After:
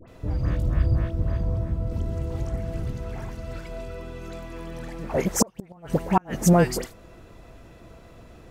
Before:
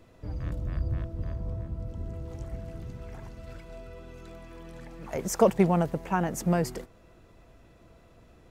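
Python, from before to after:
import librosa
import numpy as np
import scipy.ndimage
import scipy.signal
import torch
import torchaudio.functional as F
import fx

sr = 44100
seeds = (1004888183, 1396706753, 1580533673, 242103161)

y = fx.dispersion(x, sr, late='highs', ms=80.0, hz=1500.0)
y = fx.gate_flip(y, sr, shuts_db=-15.0, range_db=-35)
y = fx.band_squash(y, sr, depth_pct=70, at=(1.91, 2.93))
y = F.gain(torch.from_numpy(y), 8.5).numpy()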